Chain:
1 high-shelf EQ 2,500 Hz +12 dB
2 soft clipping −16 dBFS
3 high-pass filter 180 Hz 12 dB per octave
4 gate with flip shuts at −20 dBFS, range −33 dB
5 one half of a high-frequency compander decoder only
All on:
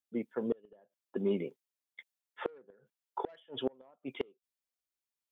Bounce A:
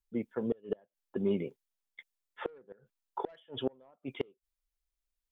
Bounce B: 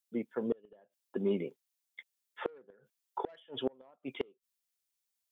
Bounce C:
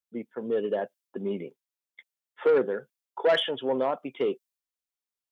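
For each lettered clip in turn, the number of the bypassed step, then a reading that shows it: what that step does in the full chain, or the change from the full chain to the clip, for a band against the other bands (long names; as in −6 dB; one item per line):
3, 125 Hz band +3.0 dB
5, change in momentary loudness spread −2 LU
4, change in momentary loudness spread −8 LU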